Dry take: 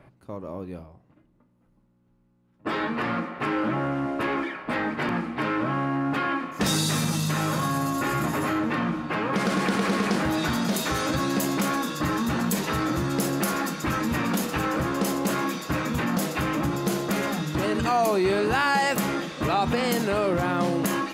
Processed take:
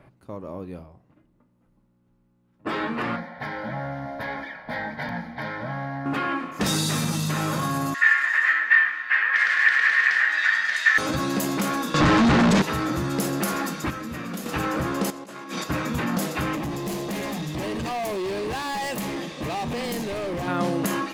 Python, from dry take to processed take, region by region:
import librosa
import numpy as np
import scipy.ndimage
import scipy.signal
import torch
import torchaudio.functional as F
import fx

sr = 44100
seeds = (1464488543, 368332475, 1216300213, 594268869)

y = fx.chain(x, sr, fx.peak_eq(hz=12000.0, db=3.5, octaves=0.39),
    fx.fixed_phaser(hz=1800.0, stages=8), at=(3.16, 6.06))
y = fx.chain(y, sr, fx.highpass_res(hz=1800.0, q=14.0),
    fx.air_absorb(metres=90.0), at=(7.94, 10.98))
y = fx.chain(y, sr, fx.median_filter(points=3),
    fx.leveller(passes=5),
    fx.air_absorb(metres=100.0), at=(11.94, 12.62))
y = fx.chain(y, sr, fx.notch(hz=900.0, q=6.1),
    fx.comb_fb(f0_hz=87.0, decay_s=1.8, harmonics='all', damping=0.0, mix_pct=60), at=(13.9, 14.46))
y = fx.chain(y, sr, fx.lowpass(hz=10000.0, slope=12),
    fx.over_compress(threshold_db=-32.0, ratio=-0.5),
    fx.low_shelf(hz=180.0, db=-7.0), at=(15.1, 15.64))
y = fx.chain(y, sr, fx.clip_hard(threshold_db=-26.0),
    fx.peak_eq(hz=1400.0, db=-12.5, octaves=0.22), at=(16.55, 20.48))